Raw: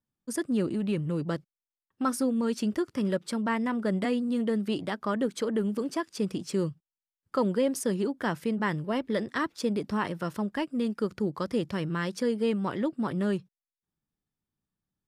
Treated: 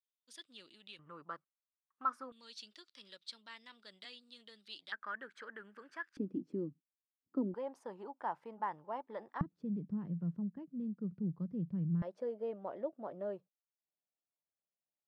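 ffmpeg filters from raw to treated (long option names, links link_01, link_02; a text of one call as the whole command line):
ffmpeg -i in.wav -af "asetnsamples=nb_out_samples=441:pad=0,asendcmd='0.99 bandpass f 1200;2.32 bandpass f 3900;4.92 bandpass f 1600;6.17 bandpass f 280;7.54 bandpass f 860;9.41 bandpass f 170;12.02 bandpass f 630',bandpass=frequency=3600:width_type=q:width=5:csg=0" out.wav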